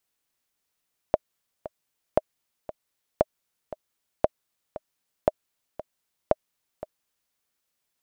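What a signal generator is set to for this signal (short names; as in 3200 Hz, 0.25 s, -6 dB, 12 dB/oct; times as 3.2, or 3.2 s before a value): metronome 116 bpm, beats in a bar 2, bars 6, 620 Hz, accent 16 dB -5 dBFS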